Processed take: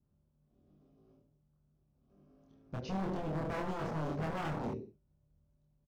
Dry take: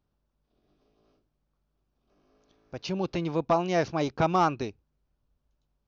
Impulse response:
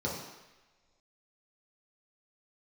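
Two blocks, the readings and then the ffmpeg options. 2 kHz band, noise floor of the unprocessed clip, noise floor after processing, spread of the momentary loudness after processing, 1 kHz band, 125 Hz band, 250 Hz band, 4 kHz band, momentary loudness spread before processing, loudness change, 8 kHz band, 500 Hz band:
-8.5 dB, -78 dBFS, -75 dBFS, 8 LU, -12.5 dB, -5.0 dB, -8.0 dB, -12.5 dB, 13 LU, -10.5 dB, n/a, -11.5 dB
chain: -filter_complex "[0:a]highpass=f=79:p=1,tiltshelf=f=690:g=9.5,aecho=1:1:34|46|74:0.158|0.178|0.282,asplit=2[a][b];[1:a]atrim=start_sample=2205,afade=t=out:st=0.23:d=0.01,atrim=end_sample=10584[c];[b][c]afir=irnorm=-1:irlink=0,volume=-17.5dB[d];[a][d]amix=inputs=2:normalize=0,alimiter=limit=-21dB:level=0:latency=1:release=14,aeval=exprs='0.0422*(abs(mod(val(0)/0.0422+3,4)-2)-1)':c=same,asplit=2[e][f];[f]adelay=26,volume=-2dB[g];[e][g]amix=inputs=2:normalize=0,adynamicequalizer=threshold=0.00447:dfrequency=2800:dqfactor=0.76:tfrequency=2800:tqfactor=0.76:attack=5:release=100:ratio=0.375:range=1.5:mode=cutabove:tftype=bell,volume=-5.5dB"

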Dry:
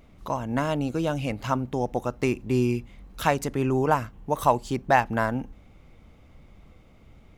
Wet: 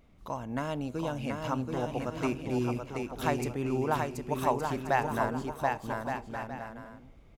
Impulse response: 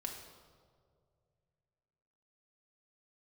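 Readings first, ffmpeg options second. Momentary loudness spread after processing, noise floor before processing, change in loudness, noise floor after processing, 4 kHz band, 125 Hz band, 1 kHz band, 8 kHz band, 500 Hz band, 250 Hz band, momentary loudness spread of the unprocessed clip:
10 LU, -53 dBFS, -6.5 dB, -55 dBFS, -5.5 dB, -6.0 dB, -5.5 dB, -5.5 dB, -5.5 dB, -5.0 dB, 8 LU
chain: -filter_complex "[0:a]aecho=1:1:730|1168|1431|1588|1683:0.631|0.398|0.251|0.158|0.1,asplit=2[a][b];[1:a]atrim=start_sample=2205[c];[b][c]afir=irnorm=-1:irlink=0,volume=-15.5dB[d];[a][d]amix=inputs=2:normalize=0,volume=-8.5dB"

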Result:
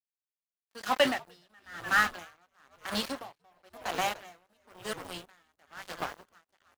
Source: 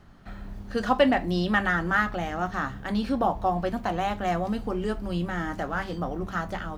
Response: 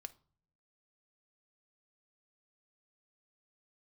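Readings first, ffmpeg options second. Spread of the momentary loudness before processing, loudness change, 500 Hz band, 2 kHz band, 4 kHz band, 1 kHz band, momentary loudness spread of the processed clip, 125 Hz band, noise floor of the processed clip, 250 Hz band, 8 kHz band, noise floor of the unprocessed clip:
9 LU, -4.5 dB, -8.0 dB, -3.5 dB, +1.5 dB, -7.5 dB, 21 LU, -20.0 dB, under -85 dBFS, -14.0 dB, +6.5 dB, -40 dBFS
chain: -filter_complex "[0:a]highpass=57,highshelf=f=6.7k:g=10.5,acrossover=split=320[a][b];[b]crystalizer=i=4:c=0[c];[a][c]amix=inputs=2:normalize=0,acrusher=bits=3:mix=0:aa=0.5,asplit=2[d][e];[e]highpass=f=720:p=1,volume=13dB,asoftclip=type=tanh:threshold=-3dB[f];[d][f]amix=inputs=2:normalize=0,lowpass=f=3k:p=1,volume=-6dB,asplit=2[g][h];[h]asplit=5[i][j][k][l][m];[i]adelay=298,afreqshift=-97,volume=-10.5dB[n];[j]adelay=596,afreqshift=-194,volume=-17.6dB[o];[k]adelay=894,afreqshift=-291,volume=-24.8dB[p];[l]adelay=1192,afreqshift=-388,volume=-31.9dB[q];[m]adelay=1490,afreqshift=-485,volume=-39dB[r];[n][o][p][q][r]amix=inputs=5:normalize=0[s];[g][s]amix=inputs=2:normalize=0,aeval=exprs='val(0)*pow(10,-37*(0.5-0.5*cos(2*PI*1*n/s))/20)':c=same,volume=-8dB"

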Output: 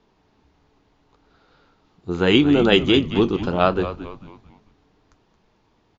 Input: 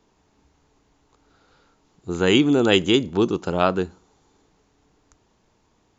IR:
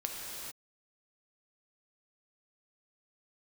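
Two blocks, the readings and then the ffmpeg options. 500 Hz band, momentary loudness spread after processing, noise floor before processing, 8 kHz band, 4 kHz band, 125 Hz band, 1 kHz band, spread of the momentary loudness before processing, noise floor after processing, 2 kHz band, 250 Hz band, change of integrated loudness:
+1.5 dB, 15 LU, -65 dBFS, n/a, +1.5 dB, +2.5 dB, +2.0 dB, 11 LU, -63 dBFS, +1.5 dB, +2.0 dB, +1.5 dB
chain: -filter_complex "[0:a]lowpass=f=5k:w=0.5412,lowpass=f=5k:w=1.3066,flanger=delay=4.4:depth=7.4:regen=-63:speed=0.73:shape=triangular,asplit=2[a][b];[b]asplit=4[c][d][e][f];[c]adelay=223,afreqshift=-100,volume=-12dB[g];[d]adelay=446,afreqshift=-200,volume=-20dB[h];[e]adelay=669,afreqshift=-300,volume=-27.9dB[i];[f]adelay=892,afreqshift=-400,volume=-35.9dB[j];[g][h][i][j]amix=inputs=4:normalize=0[k];[a][k]amix=inputs=2:normalize=0,volume=5.5dB"

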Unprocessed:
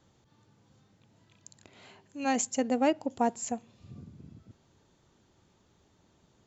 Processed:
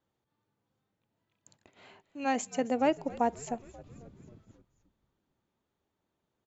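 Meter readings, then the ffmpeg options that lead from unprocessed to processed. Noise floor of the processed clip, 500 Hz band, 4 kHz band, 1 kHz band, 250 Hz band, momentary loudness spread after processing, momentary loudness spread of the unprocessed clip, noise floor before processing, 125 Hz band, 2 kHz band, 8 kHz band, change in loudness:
-84 dBFS, 0.0 dB, -3.0 dB, 0.0 dB, -2.5 dB, 22 LU, 22 LU, -68 dBFS, -1.5 dB, -0.5 dB, n/a, -1.5 dB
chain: -filter_complex "[0:a]agate=range=-14dB:threshold=-56dB:ratio=16:detection=peak,bass=f=250:g=-6,treble=f=4k:g=-9,asplit=2[a][b];[b]asplit=5[c][d][e][f][g];[c]adelay=267,afreqshift=-85,volume=-19.5dB[h];[d]adelay=534,afreqshift=-170,volume=-23.9dB[i];[e]adelay=801,afreqshift=-255,volume=-28.4dB[j];[f]adelay=1068,afreqshift=-340,volume=-32.8dB[k];[g]adelay=1335,afreqshift=-425,volume=-37.2dB[l];[h][i][j][k][l]amix=inputs=5:normalize=0[m];[a][m]amix=inputs=2:normalize=0"

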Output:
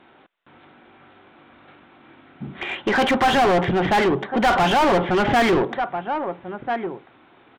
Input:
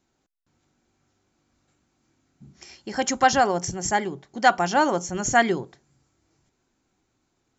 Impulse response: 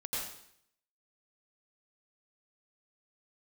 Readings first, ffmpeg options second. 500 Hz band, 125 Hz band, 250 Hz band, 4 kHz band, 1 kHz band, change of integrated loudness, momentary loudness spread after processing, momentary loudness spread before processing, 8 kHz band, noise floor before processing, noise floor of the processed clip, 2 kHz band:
+6.0 dB, +7.5 dB, +7.0 dB, +6.0 dB, +3.0 dB, +2.5 dB, 14 LU, 11 LU, n/a, -74 dBFS, -53 dBFS, +3.0 dB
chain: -filter_complex "[0:a]acontrast=82,aresample=8000,aeval=exprs='clip(val(0),-1,0.178)':c=same,aresample=44100,asplit=2[a][b];[b]adelay=1341,volume=-22dB,highshelf=f=4k:g=-30.2[c];[a][c]amix=inputs=2:normalize=0,asplit=2[d][e];[e]highpass=f=720:p=1,volume=34dB,asoftclip=type=tanh:threshold=-2.5dB[f];[d][f]amix=inputs=2:normalize=0,lowpass=f=2k:p=1,volume=-6dB,volume=-7.5dB"

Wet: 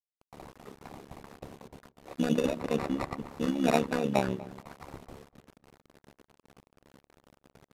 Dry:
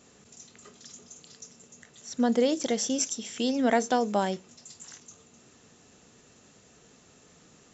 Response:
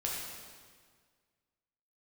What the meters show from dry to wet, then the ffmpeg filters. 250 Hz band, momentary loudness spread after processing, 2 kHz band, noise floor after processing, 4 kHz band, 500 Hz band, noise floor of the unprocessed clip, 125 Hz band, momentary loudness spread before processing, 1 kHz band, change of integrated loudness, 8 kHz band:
-2.0 dB, 22 LU, -2.0 dB, under -85 dBFS, -7.0 dB, -3.0 dB, -58 dBFS, +7.0 dB, 22 LU, -4.0 dB, -3.0 dB, n/a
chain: -filter_complex "[0:a]bandreject=f=60:t=h:w=6,bandreject=f=120:t=h:w=6,bandreject=f=180:t=h:w=6,bandreject=f=240:t=h:w=6,bandreject=f=300:t=h:w=6,bandreject=f=360:t=h:w=6,bandreject=f=420:t=h:w=6,bandreject=f=480:t=h:w=6,bandreject=f=540:t=h:w=6,agate=range=-29dB:threshold=-53dB:ratio=16:detection=peak,highshelf=f=7.1k:g=-4.5,aecho=1:1:4.7:0.88,areverse,acompressor=mode=upward:threshold=-32dB:ratio=2.5,areverse,acrusher=samples=14:mix=1:aa=0.000001,adynamicsmooth=sensitivity=6:basefreq=560,tremolo=f=70:d=0.947,acrusher=bits=8:mix=0:aa=0.000001,asplit=2[a][b];[b]adelay=243,lowpass=f=1.8k:p=1,volume=-18dB,asplit=2[c][d];[d]adelay=243,lowpass=f=1.8k:p=1,volume=0.18[e];[a][c][e]amix=inputs=3:normalize=0,aresample=32000,aresample=44100,adynamicequalizer=threshold=0.00355:dfrequency=2900:dqfactor=0.7:tfrequency=2900:tqfactor=0.7:attack=5:release=100:ratio=0.375:range=3.5:mode=cutabove:tftype=highshelf"

